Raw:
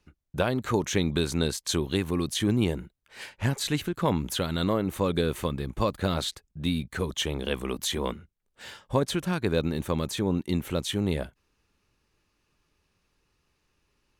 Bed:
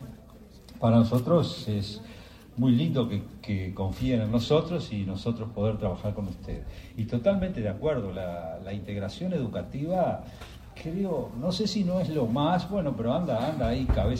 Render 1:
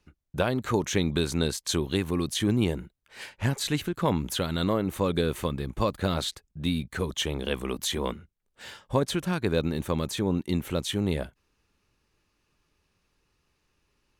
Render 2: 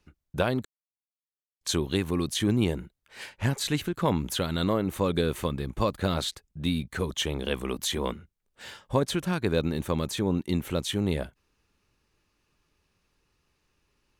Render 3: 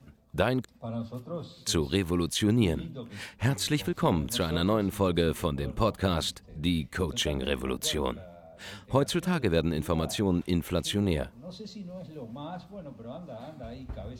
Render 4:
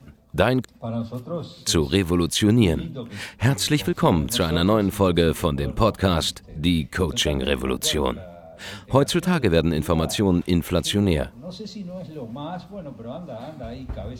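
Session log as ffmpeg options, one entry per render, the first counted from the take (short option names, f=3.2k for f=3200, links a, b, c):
-af anull
-filter_complex "[0:a]asplit=3[a][b][c];[a]atrim=end=0.65,asetpts=PTS-STARTPTS,afade=t=out:st=0.646:d=0.004:c=hsin[d];[b]atrim=start=0.65:end=1.61,asetpts=PTS-STARTPTS,volume=0[e];[c]atrim=start=1.61,asetpts=PTS-STARTPTS,afade=t=in:d=0.004:c=hsin[f];[d][e][f]concat=n=3:v=0:a=1"
-filter_complex "[1:a]volume=-14.5dB[a];[0:a][a]amix=inputs=2:normalize=0"
-af "volume=7dB"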